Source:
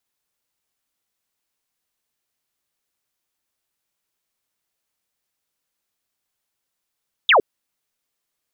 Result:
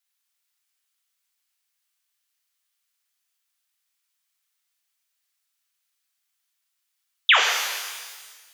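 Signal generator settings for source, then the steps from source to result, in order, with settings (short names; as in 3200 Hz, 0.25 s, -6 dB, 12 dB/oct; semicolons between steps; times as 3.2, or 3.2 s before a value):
laser zap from 3800 Hz, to 360 Hz, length 0.11 s sine, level -10 dB
HPF 1400 Hz 12 dB/oct; shimmer reverb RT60 1.5 s, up +12 st, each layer -8 dB, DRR 0.5 dB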